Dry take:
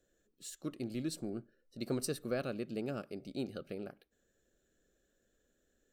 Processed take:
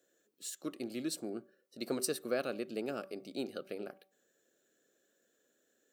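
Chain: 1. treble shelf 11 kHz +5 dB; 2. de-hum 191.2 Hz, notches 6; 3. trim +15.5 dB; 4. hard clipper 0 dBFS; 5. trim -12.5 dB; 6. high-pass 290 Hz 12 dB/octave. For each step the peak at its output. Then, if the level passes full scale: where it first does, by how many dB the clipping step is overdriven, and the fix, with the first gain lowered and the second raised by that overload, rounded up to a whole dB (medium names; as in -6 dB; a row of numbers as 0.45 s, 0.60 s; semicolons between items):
-21.0 dBFS, -21.5 dBFS, -6.0 dBFS, -6.0 dBFS, -18.5 dBFS, -18.0 dBFS; nothing clips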